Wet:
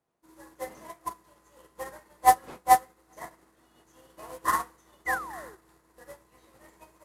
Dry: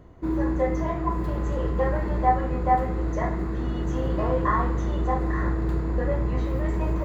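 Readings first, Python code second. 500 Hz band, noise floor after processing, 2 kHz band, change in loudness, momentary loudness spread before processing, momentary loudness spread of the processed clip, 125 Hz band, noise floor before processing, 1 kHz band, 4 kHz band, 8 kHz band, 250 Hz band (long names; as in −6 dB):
−14.0 dB, −66 dBFS, +0.5 dB, −1.0 dB, 5 LU, 23 LU, below −25 dB, −28 dBFS, 0.0 dB, +2.5 dB, can't be measured, −22.0 dB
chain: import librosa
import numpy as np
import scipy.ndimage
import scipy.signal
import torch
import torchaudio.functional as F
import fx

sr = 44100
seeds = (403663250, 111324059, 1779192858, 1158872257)

p1 = fx.cvsd(x, sr, bps=64000)
p2 = fx.dmg_wind(p1, sr, seeds[0], corner_hz=340.0, level_db=-35.0)
p3 = fx.peak_eq(p2, sr, hz=880.0, db=4.0, octaves=1.2)
p4 = fx.spec_paint(p3, sr, seeds[1], shape='fall', start_s=5.06, length_s=0.51, low_hz=350.0, high_hz=2100.0, level_db=-26.0)
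p5 = fx.tilt_eq(p4, sr, slope=4.5)
p6 = p5 + fx.echo_single(p5, sr, ms=396, db=-22.0, dry=0)
p7 = fx.upward_expand(p6, sr, threshold_db=-38.0, expansion=2.5)
y = p7 * 10.0 ** (2.0 / 20.0)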